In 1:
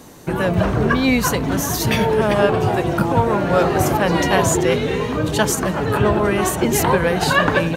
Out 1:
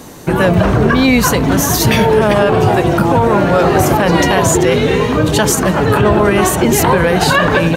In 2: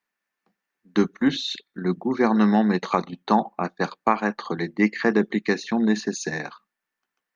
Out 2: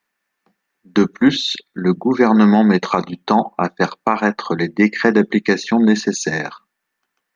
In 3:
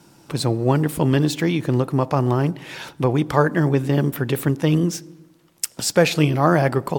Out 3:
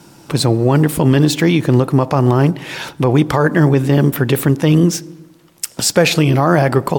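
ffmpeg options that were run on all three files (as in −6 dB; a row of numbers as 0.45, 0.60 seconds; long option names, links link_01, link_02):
-af "alimiter=level_in=9dB:limit=-1dB:release=50:level=0:latency=1,volume=-1dB"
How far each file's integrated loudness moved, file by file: +6.0, +7.0, +6.0 LU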